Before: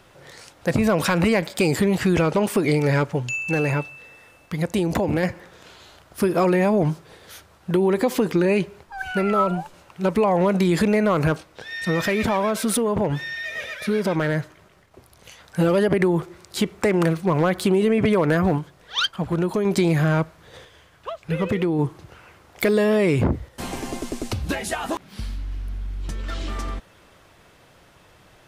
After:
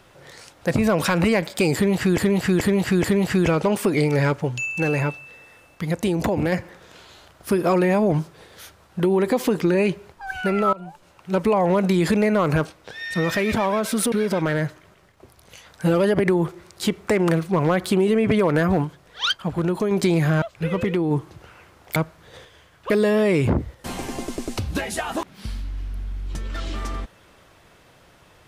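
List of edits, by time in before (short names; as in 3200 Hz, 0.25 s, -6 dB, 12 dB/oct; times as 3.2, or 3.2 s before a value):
1.75–2.18 loop, 4 plays
9.44–10.07 fade in, from -20 dB
12.83–13.86 cut
20.16–21.1 move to 22.64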